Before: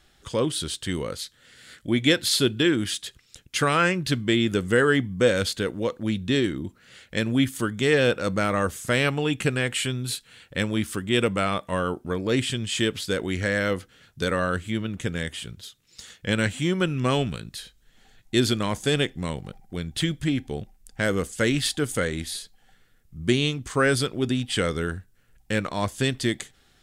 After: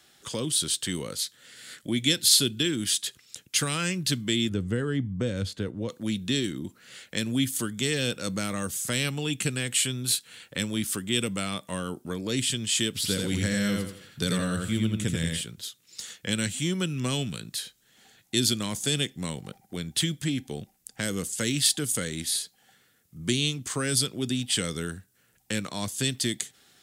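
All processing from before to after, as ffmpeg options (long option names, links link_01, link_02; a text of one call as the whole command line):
ffmpeg -i in.wav -filter_complex "[0:a]asettb=1/sr,asplit=3[link_01][link_02][link_03];[link_01]atrim=end=4.494[link_04];[link_02]atrim=start=4.49:end=5.89,asetpts=PTS-STARTPTS,afade=type=in:duration=0.004:curve=qsin,afade=type=out:start_time=1.396:duration=0.004:curve=qsin,deesser=0.3,lowpass=frequency=1000:poles=1,equalizer=frequency=93:width_type=o:width=0.73:gain=9[link_05];[link_03]atrim=start=5.886[link_06];[link_04][link_05]acrossfade=duration=0.004:curve1=hsin:curve2=qsin[link_07];[link_07][link_06]acrossfade=duration=0.004:curve1=qsin:curve2=hsin,asettb=1/sr,asplit=3[link_08][link_09][link_10];[link_08]atrim=end=12.954[link_11];[link_09]atrim=start=12.95:end=15.41,asetpts=PTS-STARTPTS,afade=type=in:duration=0.004:curve=qsin,afade=type=out:start_time=2.456:duration=0.004:curve=qsin,lowshelf=frequency=180:gain=8.5,bandreject=frequency=6400:width=13,aecho=1:1:84|168|252|336:0.708|0.191|0.0516|0.0139,atrim=end_sample=108486[link_12];[link_10]atrim=start=15.406[link_13];[link_11][link_12]acrossfade=duration=0.004:curve1=hsin:curve2=qsin[link_14];[link_14][link_13]acrossfade=duration=0.004:curve1=qsin:curve2=hsin,highpass=140,highshelf=frequency=4500:gain=8.5,acrossover=split=250|3000[link_15][link_16][link_17];[link_16]acompressor=threshold=-37dB:ratio=3[link_18];[link_15][link_18][link_17]amix=inputs=3:normalize=0" out.wav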